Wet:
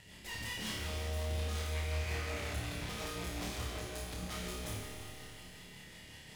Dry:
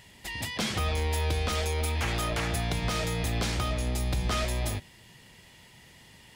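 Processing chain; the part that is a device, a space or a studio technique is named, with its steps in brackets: 1.75–2.39 resonant high shelf 3200 Hz -10 dB, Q 3; overdriven rotary cabinet (tube stage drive 42 dB, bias 0.6; rotary speaker horn 5.5 Hz); flutter echo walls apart 4.7 m, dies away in 0.45 s; Schroeder reverb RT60 3.2 s, combs from 30 ms, DRR 1.5 dB; gain +1.5 dB

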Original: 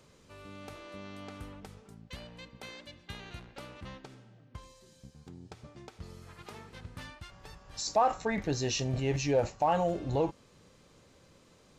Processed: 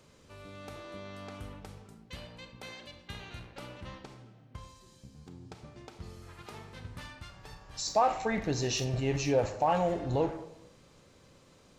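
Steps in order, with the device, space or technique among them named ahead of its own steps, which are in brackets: saturated reverb return (on a send at -6 dB: reverb RT60 0.80 s, pre-delay 28 ms + soft clip -30.5 dBFS, distortion -8 dB)

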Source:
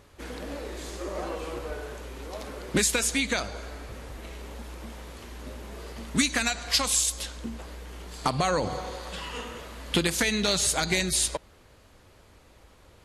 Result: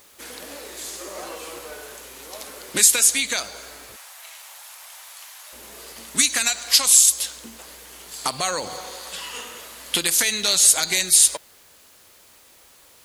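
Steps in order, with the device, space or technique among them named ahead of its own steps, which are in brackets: turntable without a phono preamp (RIAA curve recording; white noise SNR 31 dB); 3.96–5.53 steep high-pass 680 Hz 36 dB/oct

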